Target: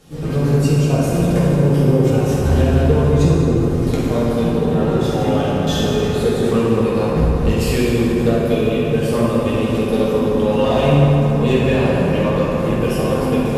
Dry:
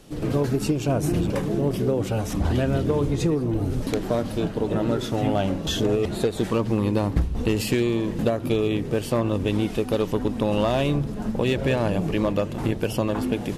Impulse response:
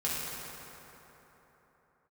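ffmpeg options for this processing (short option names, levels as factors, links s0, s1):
-filter_complex "[1:a]atrim=start_sample=2205[s0];[0:a][s0]afir=irnorm=-1:irlink=0,volume=0.891"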